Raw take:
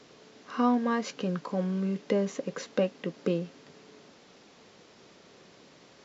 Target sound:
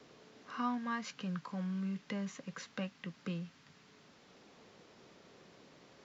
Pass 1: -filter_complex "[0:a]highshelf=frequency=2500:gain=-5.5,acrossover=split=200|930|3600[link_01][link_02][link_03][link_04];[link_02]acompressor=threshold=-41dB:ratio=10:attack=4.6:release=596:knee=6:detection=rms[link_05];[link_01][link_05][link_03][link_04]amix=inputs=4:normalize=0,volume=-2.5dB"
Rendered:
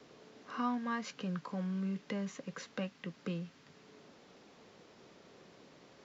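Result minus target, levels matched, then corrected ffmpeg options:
downward compressor: peak gain reduction −10.5 dB
-filter_complex "[0:a]highshelf=frequency=2500:gain=-5.5,acrossover=split=200|930|3600[link_01][link_02][link_03][link_04];[link_02]acompressor=threshold=-52.5dB:ratio=10:attack=4.6:release=596:knee=6:detection=rms[link_05];[link_01][link_05][link_03][link_04]amix=inputs=4:normalize=0,volume=-2.5dB"

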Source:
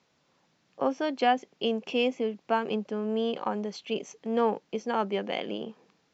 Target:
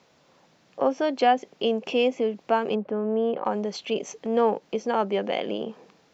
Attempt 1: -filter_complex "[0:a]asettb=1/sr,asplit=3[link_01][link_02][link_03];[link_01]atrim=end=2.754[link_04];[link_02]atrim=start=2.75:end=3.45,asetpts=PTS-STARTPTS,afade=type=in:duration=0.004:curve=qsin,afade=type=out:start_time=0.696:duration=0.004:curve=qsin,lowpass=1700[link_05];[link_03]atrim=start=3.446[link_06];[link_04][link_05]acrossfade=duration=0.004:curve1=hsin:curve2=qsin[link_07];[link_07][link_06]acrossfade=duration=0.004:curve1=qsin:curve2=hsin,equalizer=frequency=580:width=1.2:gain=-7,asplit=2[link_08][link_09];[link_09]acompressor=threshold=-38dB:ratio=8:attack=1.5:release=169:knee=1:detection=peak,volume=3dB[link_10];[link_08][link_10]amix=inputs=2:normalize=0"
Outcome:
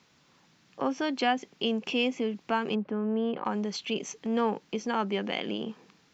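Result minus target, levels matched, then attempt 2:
500 Hz band −3.0 dB
-filter_complex "[0:a]asettb=1/sr,asplit=3[link_01][link_02][link_03];[link_01]atrim=end=2.754[link_04];[link_02]atrim=start=2.75:end=3.45,asetpts=PTS-STARTPTS,afade=type=in:duration=0.004:curve=qsin,afade=type=out:start_time=0.696:duration=0.004:curve=qsin,lowpass=1700[link_05];[link_03]atrim=start=3.446[link_06];[link_04][link_05]acrossfade=duration=0.004:curve1=hsin:curve2=qsin[link_07];[link_07][link_06]acrossfade=duration=0.004:curve1=qsin:curve2=hsin,equalizer=frequency=580:width=1.2:gain=4.5,asplit=2[link_08][link_09];[link_09]acompressor=threshold=-38dB:ratio=8:attack=1.5:release=169:knee=1:detection=peak,volume=3dB[link_10];[link_08][link_10]amix=inputs=2:normalize=0"

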